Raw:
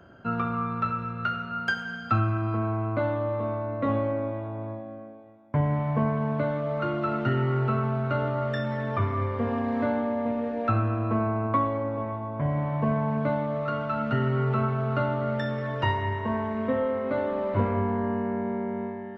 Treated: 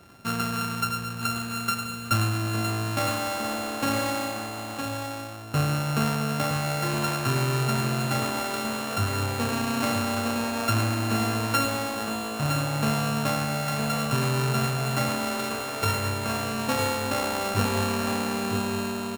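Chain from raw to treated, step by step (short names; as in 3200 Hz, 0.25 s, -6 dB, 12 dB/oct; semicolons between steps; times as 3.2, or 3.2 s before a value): sample sorter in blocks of 32 samples; echo 0.961 s -6 dB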